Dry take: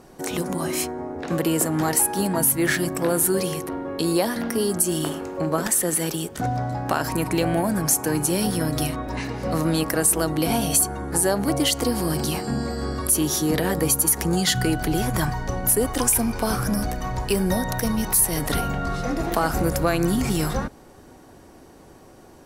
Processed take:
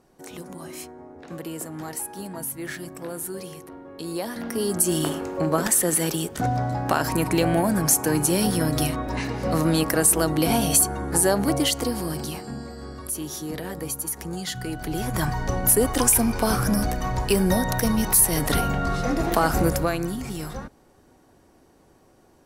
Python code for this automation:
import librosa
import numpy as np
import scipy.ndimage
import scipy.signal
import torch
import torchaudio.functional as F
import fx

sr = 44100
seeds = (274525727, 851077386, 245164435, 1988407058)

y = fx.gain(x, sr, db=fx.line((3.92, -12.0), (4.89, 1.0), (11.4, 1.0), (12.7, -10.0), (14.62, -10.0), (15.43, 1.5), (19.67, 1.5), (20.18, -9.0)))